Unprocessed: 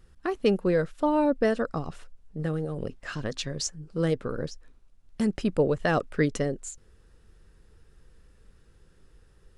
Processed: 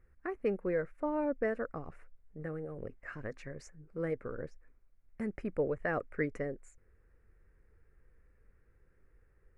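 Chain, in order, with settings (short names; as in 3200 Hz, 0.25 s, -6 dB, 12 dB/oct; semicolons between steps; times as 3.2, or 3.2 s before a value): EQ curve 100 Hz 0 dB, 160 Hz -5 dB, 510 Hz +1 dB, 900 Hz -3 dB, 2200 Hz +4 dB, 3300 Hz -23 dB, 11000 Hz -11 dB; gain -8.5 dB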